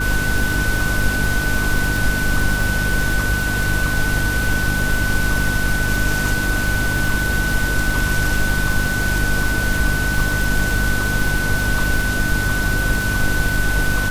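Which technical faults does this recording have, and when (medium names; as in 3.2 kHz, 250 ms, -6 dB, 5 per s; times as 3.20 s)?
crackle 140 per s -23 dBFS
hum 50 Hz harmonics 6 -23 dBFS
whine 1.5 kHz -21 dBFS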